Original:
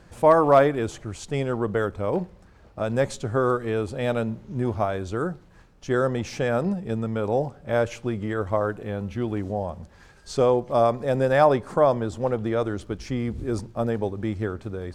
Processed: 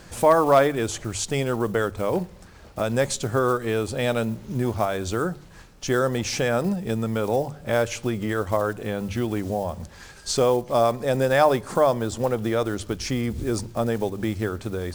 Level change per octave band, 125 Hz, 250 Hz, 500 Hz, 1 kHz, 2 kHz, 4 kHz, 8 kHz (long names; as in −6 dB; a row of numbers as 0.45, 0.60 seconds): +0.5, +1.0, 0.0, +0.5, +3.0, +8.0, +11.5 decibels